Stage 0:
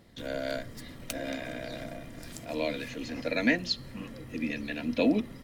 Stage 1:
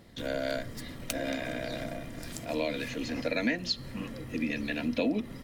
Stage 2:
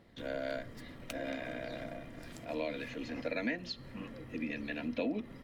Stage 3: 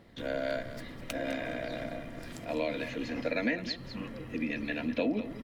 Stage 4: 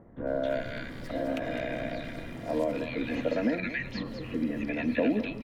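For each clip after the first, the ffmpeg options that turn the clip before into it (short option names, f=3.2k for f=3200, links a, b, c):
-af "acompressor=threshold=-30dB:ratio=3,volume=3dB"
-af "bass=f=250:g=-3,treble=f=4k:g=-10,volume=-5dB"
-af "aecho=1:1:204:0.237,volume=4.5dB"
-filter_complex "[0:a]acrossover=split=1400[a][b];[b]adelay=270[c];[a][c]amix=inputs=2:normalize=0,acrossover=split=2900[d][e];[e]acompressor=threshold=-55dB:ratio=4:attack=1:release=60[f];[d][f]amix=inputs=2:normalize=0,volume=4dB"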